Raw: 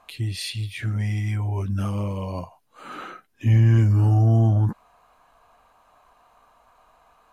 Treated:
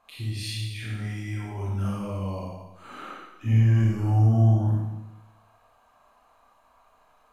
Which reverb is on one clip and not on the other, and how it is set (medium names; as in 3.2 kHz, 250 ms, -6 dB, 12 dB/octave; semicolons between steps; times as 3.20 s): Schroeder reverb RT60 1 s, combs from 28 ms, DRR -5 dB; trim -9 dB